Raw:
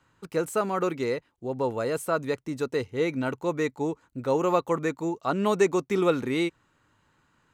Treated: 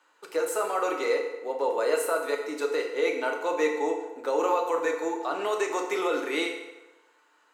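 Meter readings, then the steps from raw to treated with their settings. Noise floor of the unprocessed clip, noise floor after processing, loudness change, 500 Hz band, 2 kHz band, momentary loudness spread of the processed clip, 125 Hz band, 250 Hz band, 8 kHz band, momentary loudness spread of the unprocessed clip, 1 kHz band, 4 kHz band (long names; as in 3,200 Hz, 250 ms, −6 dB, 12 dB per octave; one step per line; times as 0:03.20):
−68 dBFS, −64 dBFS, −0.5 dB, 0.0 dB, +3.0 dB, 5 LU, below −25 dB, −6.5 dB, +3.0 dB, 7 LU, +1.5 dB, +2.5 dB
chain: high-pass filter 420 Hz 24 dB per octave
brickwall limiter −21.5 dBFS, peak gain reduction 11 dB
feedback delay network reverb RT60 1.1 s, low-frequency decay 0.8×, high-frequency decay 0.75×, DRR 1 dB
level +2 dB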